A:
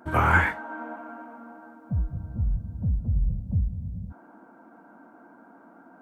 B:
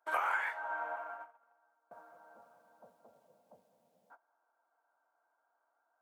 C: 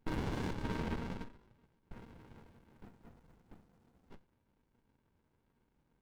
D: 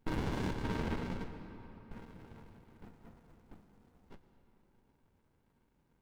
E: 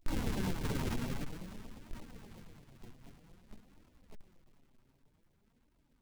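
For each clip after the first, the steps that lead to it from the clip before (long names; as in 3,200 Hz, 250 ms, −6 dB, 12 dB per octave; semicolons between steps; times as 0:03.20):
noise gate −40 dBFS, range −24 dB; high-pass filter 600 Hz 24 dB per octave; downward compressor 12 to 1, threshold −30 dBFS, peak gain reduction 14.5 dB
brickwall limiter −30.5 dBFS, peak gain reduction 11 dB; flanger 0.41 Hz, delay 7.8 ms, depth 7.3 ms, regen +85%; windowed peak hold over 65 samples; level +13 dB
convolution reverb RT60 4.1 s, pre-delay 95 ms, DRR 9.5 dB; level +1.5 dB
each half-wave held at its own peak; flanger 0.52 Hz, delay 2.9 ms, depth 5.4 ms, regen +44%; auto-filter notch saw down 8.5 Hz 340–1,800 Hz; level +1.5 dB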